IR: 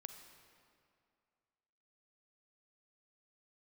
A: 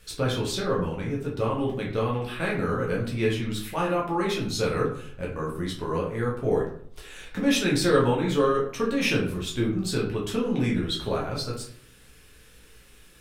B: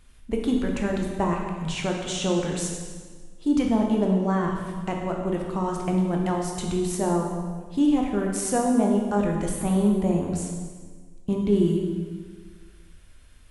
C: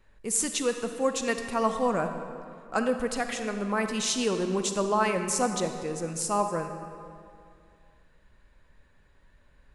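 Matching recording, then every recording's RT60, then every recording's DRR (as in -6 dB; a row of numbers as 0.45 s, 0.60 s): C; 0.60 s, 1.5 s, 2.4 s; -4.0 dB, 0.5 dB, 6.5 dB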